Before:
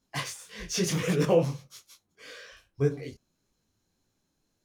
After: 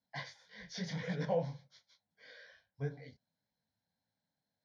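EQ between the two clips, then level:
high-pass filter 140 Hz 12 dB per octave
Bessel low-pass filter 3,800 Hz, order 4
phaser with its sweep stopped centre 1,800 Hz, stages 8
−6.0 dB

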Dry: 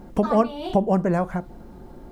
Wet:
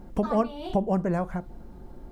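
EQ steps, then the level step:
low-shelf EQ 79 Hz +8 dB
−5.5 dB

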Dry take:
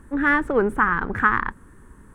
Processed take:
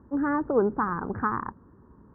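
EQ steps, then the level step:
high-pass filter 78 Hz 12 dB per octave
low-pass filter 1,100 Hz 24 dB per octave
−2.5 dB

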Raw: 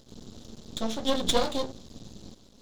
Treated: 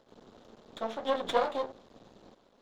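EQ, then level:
three-way crossover with the lows and the highs turned down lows −14 dB, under 440 Hz, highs −21 dB, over 2,300 Hz
low-shelf EQ 90 Hz −9.5 dB
+2.0 dB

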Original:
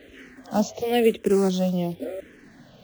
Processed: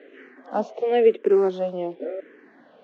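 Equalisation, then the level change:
four-pole ladder high-pass 290 Hz, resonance 25%
low-pass filter 1,800 Hz 12 dB per octave
parametric band 630 Hz −3.5 dB 0.46 octaves
+8.0 dB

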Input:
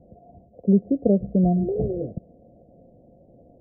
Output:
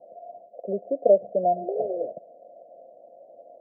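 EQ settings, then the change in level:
high-pass with resonance 630 Hz, resonance Q 4.9
high-frequency loss of the air 480 metres
0.0 dB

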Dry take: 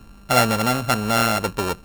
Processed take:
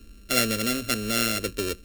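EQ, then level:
parametric band 890 Hz −7.5 dB 1.7 octaves
phaser with its sweep stopped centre 360 Hz, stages 4
0.0 dB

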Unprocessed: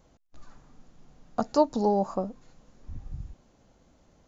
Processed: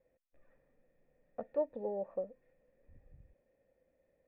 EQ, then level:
formant resonators in series e
high-shelf EQ 3,100 Hz +7.5 dB
−1.5 dB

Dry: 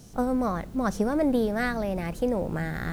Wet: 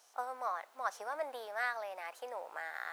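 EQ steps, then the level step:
high-pass filter 780 Hz 24 dB per octave
high-shelf EQ 2,300 Hz −9 dB
−2.0 dB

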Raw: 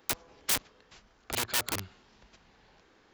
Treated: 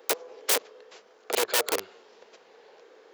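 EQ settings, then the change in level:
high-pass with resonance 460 Hz, resonance Q 4.9
+3.5 dB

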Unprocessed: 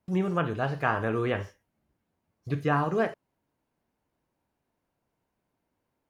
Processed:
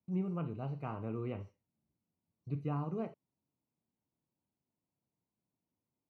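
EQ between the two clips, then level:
moving average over 26 samples
high-pass filter 140 Hz 12 dB per octave
parametric band 570 Hz −13.5 dB 2.7 octaves
0.0 dB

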